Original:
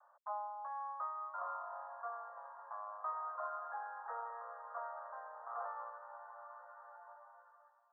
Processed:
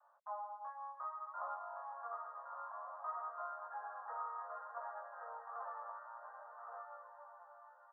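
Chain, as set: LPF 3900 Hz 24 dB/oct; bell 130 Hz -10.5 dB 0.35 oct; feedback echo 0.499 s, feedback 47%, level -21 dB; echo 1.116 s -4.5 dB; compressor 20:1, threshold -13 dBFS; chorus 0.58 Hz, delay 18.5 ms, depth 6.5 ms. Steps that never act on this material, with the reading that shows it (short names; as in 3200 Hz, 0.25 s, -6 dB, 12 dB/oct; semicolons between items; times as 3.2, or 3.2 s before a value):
LPF 3900 Hz: input band ends at 1900 Hz; bell 130 Hz: input band starts at 450 Hz; compressor, threshold -13 dBFS: input peak -28.0 dBFS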